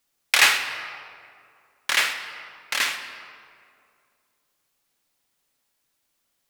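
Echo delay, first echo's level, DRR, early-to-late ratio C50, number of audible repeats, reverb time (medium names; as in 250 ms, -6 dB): no echo, no echo, 5.5 dB, 7.5 dB, no echo, 2.3 s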